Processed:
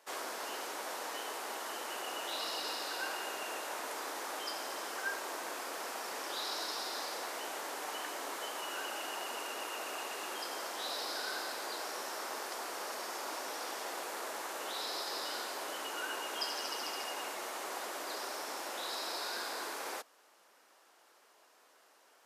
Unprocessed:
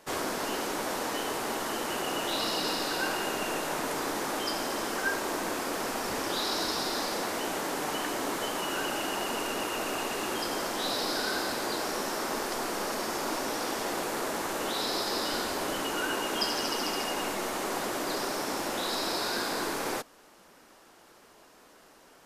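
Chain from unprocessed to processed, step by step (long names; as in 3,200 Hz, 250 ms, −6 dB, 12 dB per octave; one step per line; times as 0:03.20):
high-pass filter 510 Hz 12 dB per octave
level −7 dB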